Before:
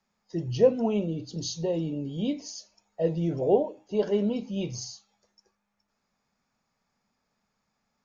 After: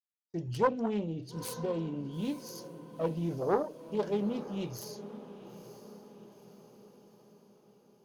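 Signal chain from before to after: self-modulated delay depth 0.45 ms; gate -50 dBFS, range -34 dB; diffused feedback echo 0.925 s, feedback 51%, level -14 dB; gain -5.5 dB

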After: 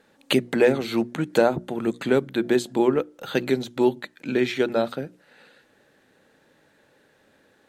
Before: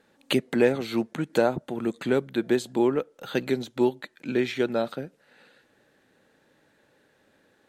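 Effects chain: notches 60/120/180/240/300/360 Hz; gain +3.5 dB

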